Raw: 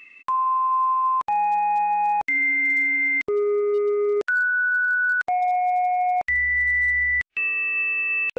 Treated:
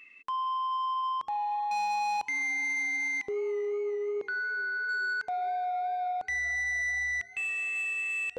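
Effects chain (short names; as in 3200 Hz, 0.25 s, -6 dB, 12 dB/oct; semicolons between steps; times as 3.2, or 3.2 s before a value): de-hum 110.8 Hz, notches 4; 1.71–2.27 sample leveller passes 3; soft clip -21 dBFS, distortion -17 dB; 3.74–4.89 air absorption 230 m; warbling echo 0.434 s, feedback 66%, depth 68 cents, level -23 dB; gain -6.5 dB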